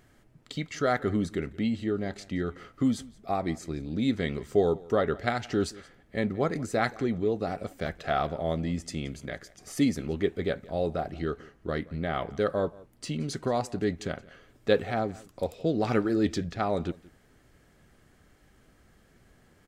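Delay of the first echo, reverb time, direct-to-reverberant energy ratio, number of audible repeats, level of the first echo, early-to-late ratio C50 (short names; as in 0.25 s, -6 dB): 0.174 s, none, none, 1, -22.0 dB, none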